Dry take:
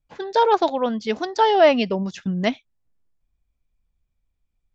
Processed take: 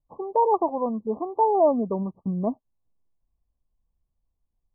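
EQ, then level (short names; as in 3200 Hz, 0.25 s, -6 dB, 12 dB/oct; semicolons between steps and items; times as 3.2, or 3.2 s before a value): brick-wall FIR low-pass 1200 Hz; low shelf 430 Hz -3.5 dB; dynamic EQ 650 Hz, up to -4 dB, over -29 dBFS, Q 1.3; 0.0 dB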